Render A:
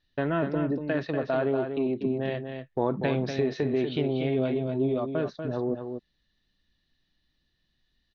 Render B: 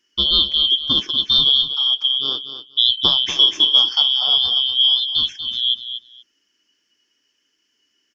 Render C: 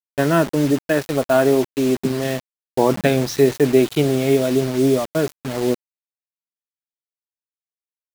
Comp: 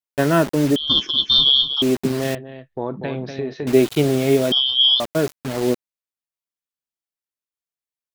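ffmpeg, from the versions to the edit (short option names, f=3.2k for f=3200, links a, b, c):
-filter_complex "[1:a]asplit=2[a][b];[2:a]asplit=4[c][d][e][f];[c]atrim=end=0.762[g];[a]atrim=start=0.758:end=1.822[h];[d]atrim=start=1.818:end=2.352[i];[0:a]atrim=start=2.348:end=3.672[j];[e]atrim=start=3.668:end=4.522[k];[b]atrim=start=4.518:end=5.002[l];[f]atrim=start=4.998[m];[g][h]acrossfade=d=0.004:c1=hsin:c2=hsin[n];[n][i]acrossfade=d=0.004:c1=hsin:c2=hsin[o];[o][j]acrossfade=d=0.004:c1=hsin:c2=hsin[p];[p][k]acrossfade=d=0.004:c1=hsin:c2=hsin[q];[q][l]acrossfade=d=0.004:c1=hsin:c2=hsin[r];[r][m]acrossfade=d=0.004:c1=hsin:c2=hsin"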